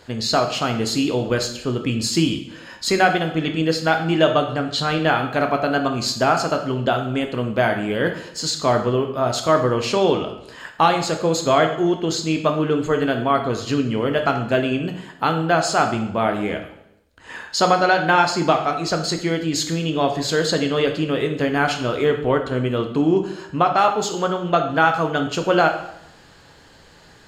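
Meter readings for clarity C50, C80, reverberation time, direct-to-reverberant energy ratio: 8.5 dB, 11.5 dB, 0.80 s, 4.5 dB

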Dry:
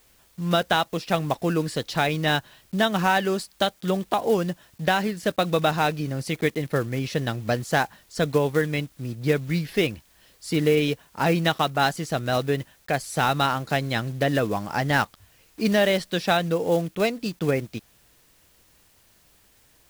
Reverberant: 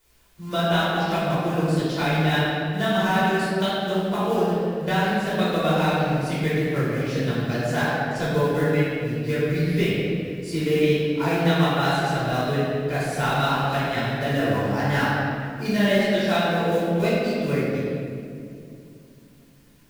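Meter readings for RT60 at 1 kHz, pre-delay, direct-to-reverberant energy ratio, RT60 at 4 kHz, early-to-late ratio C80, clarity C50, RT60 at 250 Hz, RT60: 2.1 s, 3 ms, -10.5 dB, 1.4 s, -1.0 dB, -3.5 dB, 3.8 s, 2.5 s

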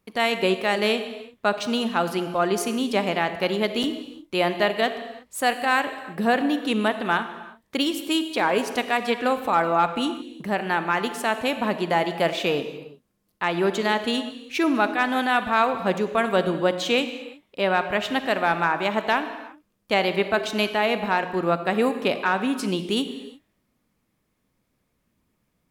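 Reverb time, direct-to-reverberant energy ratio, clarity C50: not exponential, 9.5 dB, 10.0 dB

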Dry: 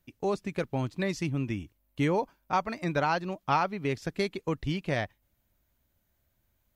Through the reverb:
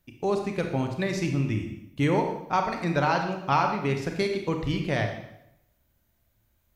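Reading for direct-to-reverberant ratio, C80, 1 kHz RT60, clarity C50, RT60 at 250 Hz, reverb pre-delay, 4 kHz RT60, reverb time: 4.0 dB, 8.5 dB, 0.75 s, 6.0 dB, 0.80 s, 27 ms, 0.75 s, 0.80 s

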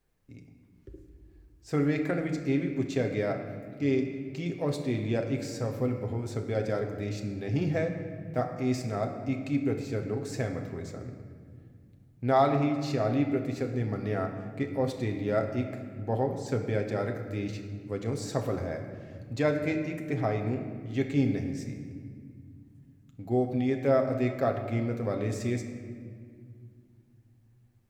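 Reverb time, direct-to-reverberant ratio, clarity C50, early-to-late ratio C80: 2.0 s, 3.0 dB, 7.0 dB, 8.5 dB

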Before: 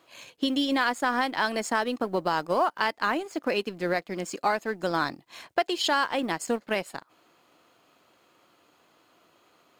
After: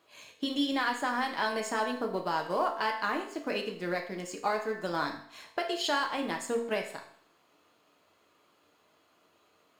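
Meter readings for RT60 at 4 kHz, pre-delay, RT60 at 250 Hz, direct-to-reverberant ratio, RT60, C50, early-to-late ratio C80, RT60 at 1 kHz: 0.60 s, 5 ms, 0.60 s, 2.0 dB, 0.60 s, 8.5 dB, 11.5 dB, 0.60 s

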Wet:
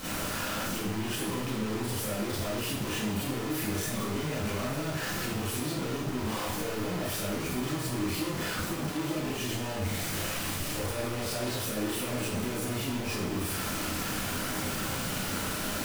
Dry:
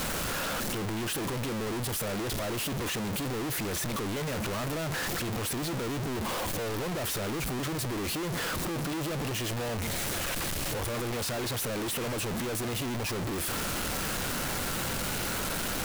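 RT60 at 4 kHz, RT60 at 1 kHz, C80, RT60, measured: 0.75 s, 0.80 s, 3.5 dB, 0.75 s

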